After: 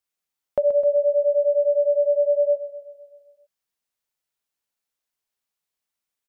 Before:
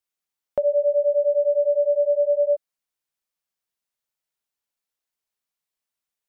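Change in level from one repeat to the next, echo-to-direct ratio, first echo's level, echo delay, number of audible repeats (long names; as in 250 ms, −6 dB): −4.5 dB, −9.5 dB, −11.5 dB, 129 ms, 6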